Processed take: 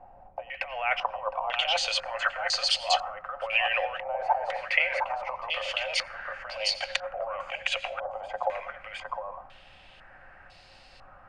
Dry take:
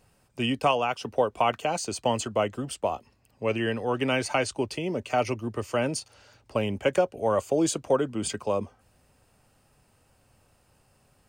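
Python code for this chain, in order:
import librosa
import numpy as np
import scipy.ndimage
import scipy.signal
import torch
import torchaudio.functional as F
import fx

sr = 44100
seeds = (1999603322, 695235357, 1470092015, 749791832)

y = fx.over_compress(x, sr, threshold_db=-31.0, ratio=-0.5)
y = scipy.signal.sosfilt(scipy.signal.cheby1(6, 6, 520.0, 'highpass', fs=sr, output='sos'), y)
y = fx.dmg_noise_colour(y, sr, seeds[0], colour='brown', level_db=-65.0)
y = y + 10.0 ** (-6.0 / 20.0) * np.pad(y, (int(710 * sr / 1000.0), 0))[:len(y)]
y = fx.rev_plate(y, sr, seeds[1], rt60_s=0.59, hf_ratio=0.75, predelay_ms=75, drr_db=14.5)
y = fx.filter_held_lowpass(y, sr, hz=2.0, low_hz=800.0, high_hz=4300.0)
y = y * librosa.db_to_amplitude(7.5)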